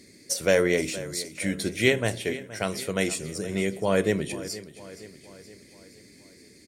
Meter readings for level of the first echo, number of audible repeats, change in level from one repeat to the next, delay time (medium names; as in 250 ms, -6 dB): -16.0 dB, 4, -5.5 dB, 471 ms